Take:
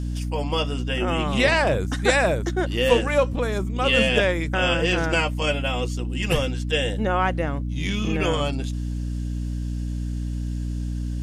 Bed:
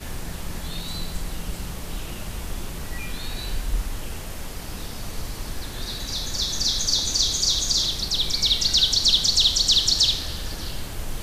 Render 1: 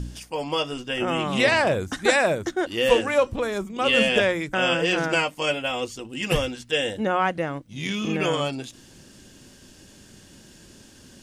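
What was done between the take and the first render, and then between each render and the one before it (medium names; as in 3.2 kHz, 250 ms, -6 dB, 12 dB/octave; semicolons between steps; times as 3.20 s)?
de-hum 60 Hz, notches 5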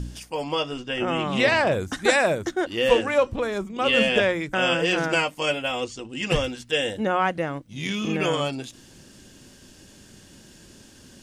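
0.52–1.72 s: distance through air 51 m; 2.64–4.49 s: treble shelf 8.1 kHz -8.5 dB; 5.84–6.44 s: low-pass 8.4 kHz 24 dB/octave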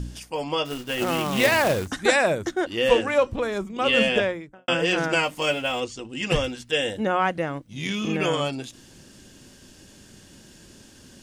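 0.65–1.88 s: companded quantiser 4-bit; 4.06–4.68 s: studio fade out; 5.23–5.80 s: companding laws mixed up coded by mu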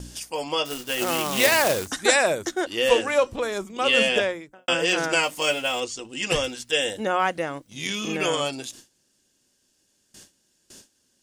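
gate with hold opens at -36 dBFS; tone controls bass -8 dB, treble +8 dB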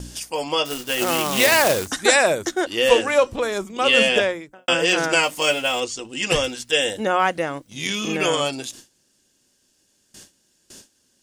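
trim +3.5 dB; peak limiter -1 dBFS, peak gain reduction 2.5 dB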